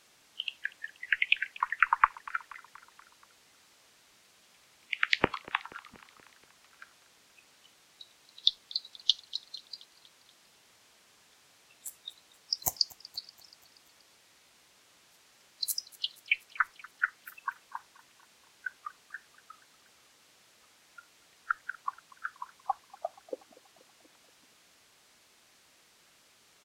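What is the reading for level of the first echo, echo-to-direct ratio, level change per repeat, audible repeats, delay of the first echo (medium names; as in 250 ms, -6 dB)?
-21.5 dB, -19.5 dB, -4.5 dB, 4, 239 ms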